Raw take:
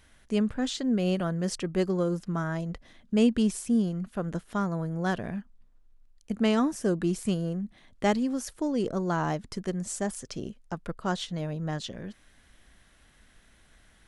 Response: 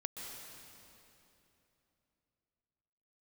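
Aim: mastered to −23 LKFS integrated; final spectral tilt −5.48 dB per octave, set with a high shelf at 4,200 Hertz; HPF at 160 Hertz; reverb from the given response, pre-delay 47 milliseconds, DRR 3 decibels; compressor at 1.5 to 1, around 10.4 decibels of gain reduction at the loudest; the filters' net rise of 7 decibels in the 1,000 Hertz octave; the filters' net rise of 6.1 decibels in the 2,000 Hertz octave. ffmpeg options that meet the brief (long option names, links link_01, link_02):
-filter_complex "[0:a]highpass=160,equalizer=frequency=1000:width_type=o:gain=8,equalizer=frequency=2000:width_type=o:gain=5.5,highshelf=frequency=4200:gain=-3.5,acompressor=threshold=-47dB:ratio=1.5,asplit=2[link_01][link_02];[1:a]atrim=start_sample=2205,adelay=47[link_03];[link_02][link_03]afir=irnorm=-1:irlink=0,volume=-2.5dB[link_04];[link_01][link_04]amix=inputs=2:normalize=0,volume=12.5dB"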